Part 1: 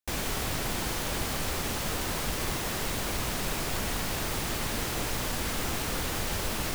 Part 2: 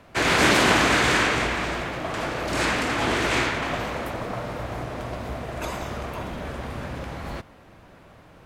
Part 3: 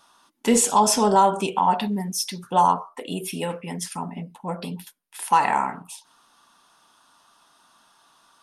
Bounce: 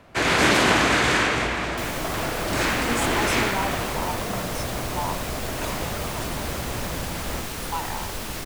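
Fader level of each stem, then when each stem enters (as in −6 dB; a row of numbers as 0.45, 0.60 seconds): −0.5, 0.0, −12.5 decibels; 1.70, 0.00, 2.40 seconds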